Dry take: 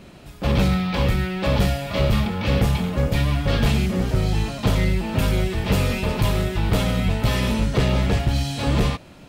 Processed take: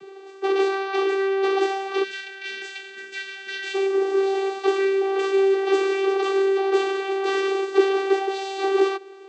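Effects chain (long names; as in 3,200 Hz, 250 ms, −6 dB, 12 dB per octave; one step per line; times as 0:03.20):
channel vocoder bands 16, saw 389 Hz
gain on a spectral selection 0:02.04–0:03.75, 240–1,500 Hz −22 dB
level +1.5 dB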